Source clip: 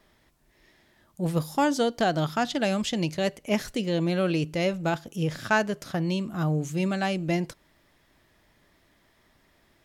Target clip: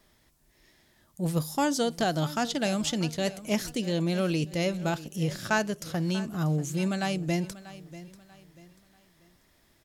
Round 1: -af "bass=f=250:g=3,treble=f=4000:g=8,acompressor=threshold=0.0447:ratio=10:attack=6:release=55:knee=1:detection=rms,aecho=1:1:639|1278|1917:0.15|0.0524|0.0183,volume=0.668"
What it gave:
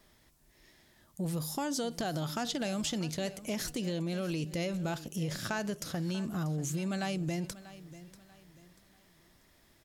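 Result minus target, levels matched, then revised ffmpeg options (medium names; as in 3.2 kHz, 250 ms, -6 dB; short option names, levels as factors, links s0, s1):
compression: peak gain reduction +10.5 dB
-af "bass=f=250:g=3,treble=f=4000:g=8,aecho=1:1:639|1278|1917:0.15|0.0524|0.0183,volume=0.668"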